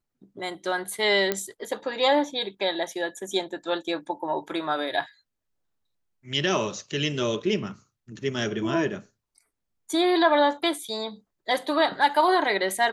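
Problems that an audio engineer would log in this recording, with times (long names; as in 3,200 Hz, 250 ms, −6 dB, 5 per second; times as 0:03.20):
0:01.32: click −9 dBFS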